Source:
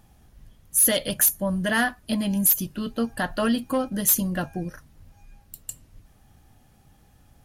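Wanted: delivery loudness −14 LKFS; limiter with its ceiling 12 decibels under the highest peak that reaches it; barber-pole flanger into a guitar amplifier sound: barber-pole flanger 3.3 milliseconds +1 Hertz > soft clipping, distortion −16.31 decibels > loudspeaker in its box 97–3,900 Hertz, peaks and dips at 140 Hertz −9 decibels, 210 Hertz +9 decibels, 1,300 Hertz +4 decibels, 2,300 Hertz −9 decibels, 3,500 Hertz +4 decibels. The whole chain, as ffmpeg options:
ffmpeg -i in.wav -filter_complex "[0:a]alimiter=limit=-21.5dB:level=0:latency=1,asplit=2[link_01][link_02];[link_02]adelay=3.3,afreqshift=1[link_03];[link_01][link_03]amix=inputs=2:normalize=1,asoftclip=threshold=-26.5dB,highpass=97,equalizer=frequency=140:width_type=q:width=4:gain=-9,equalizer=frequency=210:width_type=q:width=4:gain=9,equalizer=frequency=1300:width_type=q:width=4:gain=4,equalizer=frequency=2300:width_type=q:width=4:gain=-9,equalizer=frequency=3500:width_type=q:width=4:gain=4,lowpass=frequency=3900:width=0.5412,lowpass=frequency=3900:width=1.3066,volume=18dB" out.wav

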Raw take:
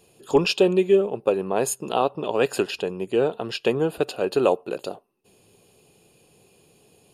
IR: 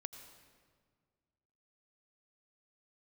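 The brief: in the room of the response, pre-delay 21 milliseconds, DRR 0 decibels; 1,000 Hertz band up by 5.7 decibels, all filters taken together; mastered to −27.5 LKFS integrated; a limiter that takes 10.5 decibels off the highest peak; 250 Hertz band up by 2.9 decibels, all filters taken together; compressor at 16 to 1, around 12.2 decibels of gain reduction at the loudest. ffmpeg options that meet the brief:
-filter_complex "[0:a]equalizer=frequency=250:width_type=o:gain=4,equalizer=frequency=1000:width_type=o:gain=7.5,acompressor=threshold=-22dB:ratio=16,alimiter=limit=-19.5dB:level=0:latency=1,asplit=2[link_01][link_02];[1:a]atrim=start_sample=2205,adelay=21[link_03];[link_02][link_03]afir=irnorm=-1:irlink=0,volume=3.5dB[link_04];[link_01][link_04]amix=inputs=2:normalize=0,volume=0.5dB"

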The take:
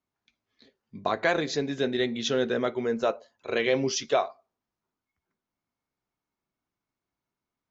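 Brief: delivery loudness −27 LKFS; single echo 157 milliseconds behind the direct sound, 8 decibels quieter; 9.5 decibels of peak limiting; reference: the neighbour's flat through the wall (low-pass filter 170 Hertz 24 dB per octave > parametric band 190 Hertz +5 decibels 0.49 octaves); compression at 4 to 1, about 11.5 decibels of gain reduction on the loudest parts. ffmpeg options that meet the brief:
ffmpeg -i in.wav -af "acompressor=threshold=-33dB:ratio=4,alimiter=level_in=2.5dB:limit=-24dB:level=0:latency=1,volume=-2.5dB,lowpass=frequency=170:width=0.5412,lowpass=frequency=170:width=1.3066,equalizer=frequency=190:width_type=o:width=0.49:gain=5,aecho=1:1:157:0.398,volume=24dB" out.wav

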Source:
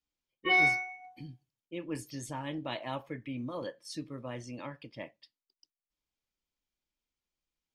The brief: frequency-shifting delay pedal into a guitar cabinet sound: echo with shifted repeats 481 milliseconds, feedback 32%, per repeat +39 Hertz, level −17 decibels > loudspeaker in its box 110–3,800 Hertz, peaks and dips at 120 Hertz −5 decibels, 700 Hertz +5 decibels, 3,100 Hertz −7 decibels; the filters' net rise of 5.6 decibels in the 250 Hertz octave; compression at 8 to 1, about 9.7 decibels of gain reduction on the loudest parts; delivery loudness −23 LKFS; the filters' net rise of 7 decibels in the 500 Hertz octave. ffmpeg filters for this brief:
ffmpeg -i in.wav -filter_complex "[0:a]equalizer=frequency=250:width_type=o:gain=5,equalizer=frequency=500:width_type=o:gain=6,acompressor=threshold=-29dB:ratio=8,asplit=4[link_01][link_02][link_03][link_04];[link_02]adelay=481,afreqshift=39,volume=-17dB[link_05];[link_03]adelay=962,afreqshift=78,volume=-26.9dB[link_06];[link_04]adelay=1443,afreqshift=117,volume=-36.8dB[link_07];[link_01][link_05][link_06][link_07]amix=inputs=4:normalize=0,highpass=110,equalizer=frequency=120:width_type=q:width=4:gain=-5,equalizer=frequency=700:width_type=q:width=4:gain=5,equalizer=frequency=3100:width_type=q:width=4:gain=-7,lowpass=frequency=3800:width=0.5412,lowpass=frequency=3800:width=1.3066,volume=13.5dB" out.wav

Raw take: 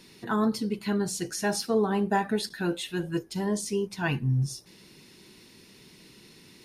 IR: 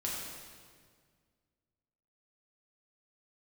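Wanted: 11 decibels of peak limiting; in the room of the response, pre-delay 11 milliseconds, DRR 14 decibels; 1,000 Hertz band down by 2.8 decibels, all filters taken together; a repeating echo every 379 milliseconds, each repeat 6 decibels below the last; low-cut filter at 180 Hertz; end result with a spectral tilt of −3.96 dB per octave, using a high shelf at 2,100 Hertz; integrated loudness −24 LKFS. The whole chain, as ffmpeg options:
-filter_complex "[0:a]highpass=180,equalizer=frequency=1000:width_type=o:gain=-4.5,highshelf=frequency=2100:gain=4,alimiter=limit=-24dB:level=0:latency=1,aecho=1:1:379|758|1137|1516|1895|2274:0.501|0.251|0.125|0.0626|0.0313|0.0157,asplit=2[link_01][link_02];[1:a]atrim=start_sample=2205,adelay=11[link_03];[link_02][link_03]afir=irnorm=-1:irlink=0,volume=-17.5dB[link_04];[link_01][link_04]amix=inputs=2:normalize=0,volume=8.5dB"

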